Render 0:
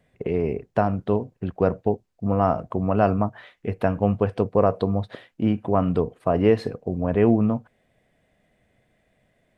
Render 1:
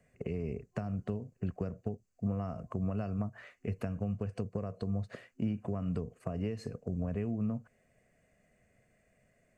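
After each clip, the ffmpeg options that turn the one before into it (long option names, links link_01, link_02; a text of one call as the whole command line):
ffmpeg -i in.wav -filter_complex "[0:a]acompressor=threshold=-22dB:ratio=6,superequalizer=6b=0.631:9b=0.501:13b=0.282:15b=2.24,acrossover=split=240|3000[link_01][link_02][link_03];[link_02]acompressor=threshold=-39dB:ratio=3[link_04];[link_01][link_04][link_03]amix=inputs=3:normalize=0,volume=-4dB" out.wav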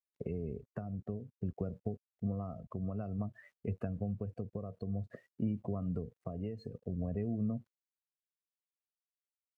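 ffmpeg -i in.wav -af "aeval=exprs='val(0)*gte(abs(val(0)),0.00158)':channel_layout=same,afftdn=noise_reduction=18:noise_floor=-44,tremolo=f=0.54:d=0.33,volume=-1dB" out.wav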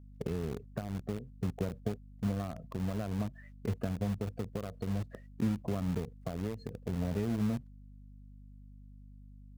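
ffmpeg -i in.wav -filter_complex "[0:a]asplit=2[link_01][link_02];[link_02]acrusher=bits=5:mix=0:aa=0.000001,volume=-7.5dB[link_03];[link_01][link_03]amix=inputs=2:normalize=0,aeval=exprs='val(0)+0.00282*(sin(2*PI*50*n/s)+sin(2*PI*2*50*n/s)/2+sin(2*PI*3*50*n/s)/3+sin(2*PI*4*50*n/s)/4+sin(2*PI*5*50*n/s)/5)':channel_layout=same" out.wav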